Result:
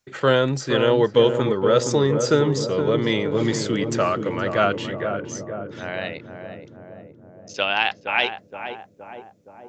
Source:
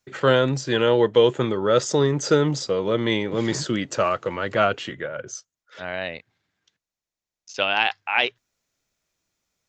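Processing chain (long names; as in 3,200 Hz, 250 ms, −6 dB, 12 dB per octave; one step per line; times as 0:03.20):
feedback echo with a low-pass in the loop 469 ms, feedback 70%, low-pass 860 Hz, level −5.5 dB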